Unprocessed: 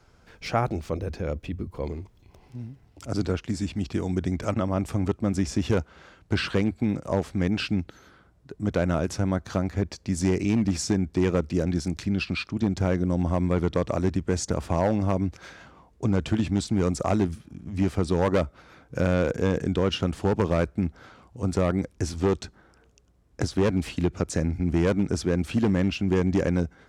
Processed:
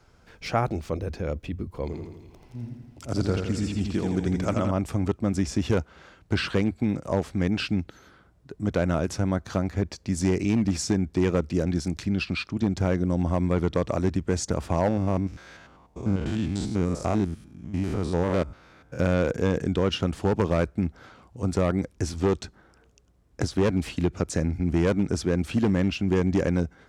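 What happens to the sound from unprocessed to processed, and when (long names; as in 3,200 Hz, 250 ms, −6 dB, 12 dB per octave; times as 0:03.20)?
0:01.85–0:04.71: repeating echo 83 ms, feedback 57%, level −5 dB
0:14.88–0:18.99: spectrum averaged block by block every 100 ms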